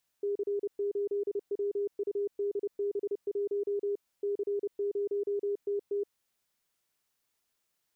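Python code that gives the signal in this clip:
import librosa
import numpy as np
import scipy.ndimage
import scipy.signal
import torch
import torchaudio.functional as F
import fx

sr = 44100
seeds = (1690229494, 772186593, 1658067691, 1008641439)

y = fx.morse(sr, text='C8WUDB1 C0TT', wpm=30, hz=405.0, level_db=-28.0)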